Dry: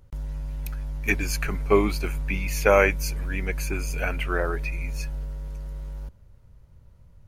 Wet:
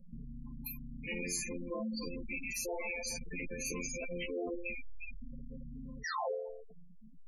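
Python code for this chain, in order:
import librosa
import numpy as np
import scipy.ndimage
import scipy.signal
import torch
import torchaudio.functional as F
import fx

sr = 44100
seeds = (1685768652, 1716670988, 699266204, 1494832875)

y = scipy.signal.sosfilt(scipy.signal.butter(2, 94.0, 'highpass', fs=sr, output='sos'), x)
y = y * np.sin(2.0 * np.pi * 86.0 * np.arange(len(y)) / sr)
y = fx.echo_feedback(y, sr, ms=144, feedback_pct=54, wet_db=-20.0)
y = fx.spec_paint(y, sr, seeds[0], shape='fall', start_s=6.04, length_s=0.29, low_hz=370.0, high_hz=2000.0, level_db=-21.0)
y = fx.rider(y, sr, range_db=4, speed_s=0.5)
y = np.clip(y, -10.0 ** (-27.5 / 20.0), 10.0 ** (-27.5 / 20.0))
y = fx.peak_eq(y, sr, hz=1500.0, db=-14.0, octaves=0.3)
y = fx.resonator_bank(y, sr, root=53, chord='major', decay_s=0.65)
y = fx.spec_gate(y, sr, threshold_db=-10, keep='strong')
y = fx.high_shelf(y, sr, hz=4900.0, db=9.5)
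y = fx.env_flatten(y, sr, amount_pct=50)
y = y * librosa.db_to_amplitude(13.5)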